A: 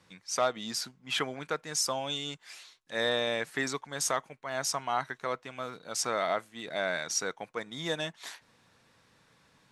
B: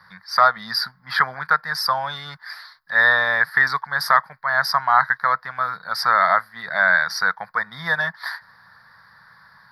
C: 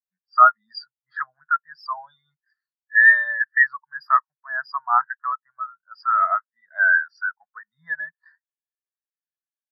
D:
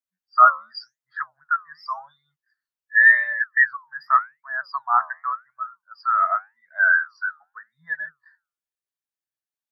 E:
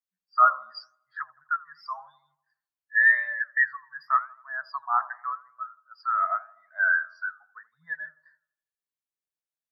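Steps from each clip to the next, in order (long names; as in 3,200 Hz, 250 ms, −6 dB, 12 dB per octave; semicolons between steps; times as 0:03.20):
drawn EQ curve 190 Hz 0 dB, 310 Hz −20 dB, 970 Hz +10 dB, 1,800 Hz +15 dB, 2,700 Hz −18 dB, 4,800 Hz +10 dB, 6,900 Hz −30 dB, 12,000 Hz +5 dB; level +6 dB
every bin expanded away from the loudest bin 2.5 to 1
flanger 0.88 Hz, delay 3.6 ms, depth 9.8 ms, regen +78%; level +4 dB
delay with a low-pass on its return 83 ms, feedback 47%, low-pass 990 Hz, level −16 dB; level −5.5 dB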